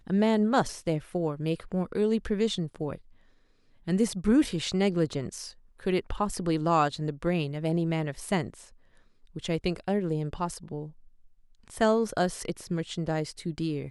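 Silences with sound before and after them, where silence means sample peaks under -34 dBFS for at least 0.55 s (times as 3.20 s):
2.95–3.88 s
8.54–9.36 s
10.86–11.68 s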